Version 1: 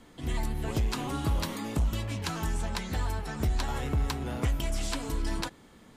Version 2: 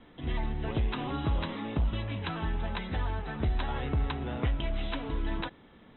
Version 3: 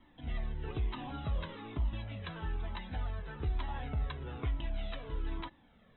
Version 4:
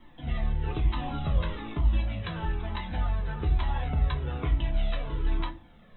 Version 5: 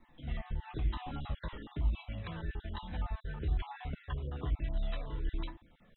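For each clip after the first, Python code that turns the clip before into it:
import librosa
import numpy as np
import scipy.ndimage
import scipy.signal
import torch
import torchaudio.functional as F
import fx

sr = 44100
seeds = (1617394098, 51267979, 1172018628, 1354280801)

y1 = scipy.signal.sosfilt(scipy.signal.cheby1(10, 1.0, 3900.0, 'lowpass', fs=sr, output='sos'), x)
y2 = fx.comb_cascade(y1, sr, direction='falling', hz=1.1)
y2 = y2 * librosa.db_to_amplitude(-3.5)
y3 = fx.room_shoebox(y2, sr, seeds[0], volume_m3=120.0, walls='furnished', distance_m=0.87)
y3 = y3 * librosa.db_to_amplitude(5.5)
y4 = fx.spec_dropout(y3, sr, seeds[1], share_pct=32)
y4 = y4 * librosa.db_to_amplitude(-7.0)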